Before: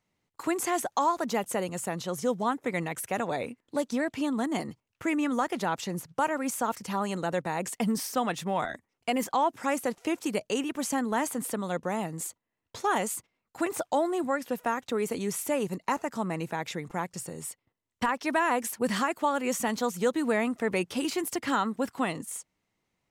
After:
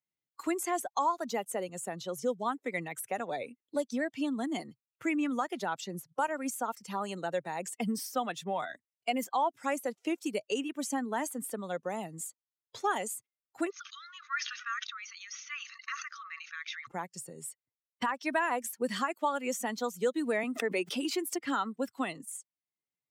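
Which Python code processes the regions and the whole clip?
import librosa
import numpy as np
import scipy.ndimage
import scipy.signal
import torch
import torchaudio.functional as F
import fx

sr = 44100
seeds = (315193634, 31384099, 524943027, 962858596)

y = fx.chain(x, sr, fx.brickwall_bandpass(low_hz=1100.0, high_hz=6700.0),
    fx.sustainer(db_per_s=38.0), at=(13.7, 16.87))
y = fx.chain(y, sr, fx.highpass(hz=190.0, slope=24),
    fx.pre_swell(db_per_s=95.0), at=(20.43, 21.39))
y = fx.bin_expand(y, sr, power=1.5)
y = scipy.signal.sosfilt(scipy.signal.butter(2, 240.0, 'highpass', fs=sr, output='sos'), y)
y = fx.band_squash(y, sr, depth_pct=40)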